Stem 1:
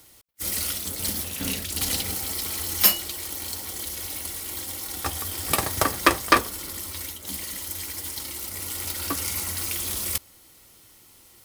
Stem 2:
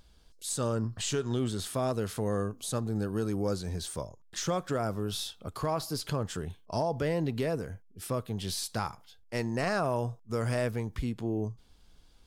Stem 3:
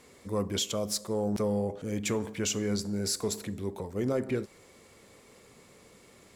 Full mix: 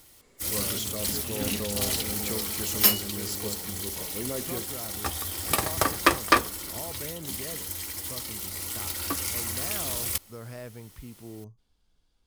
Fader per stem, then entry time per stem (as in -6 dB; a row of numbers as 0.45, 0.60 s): -2.0, -11.0, -5.5 dB; 0.00, 0.00, 0.20 s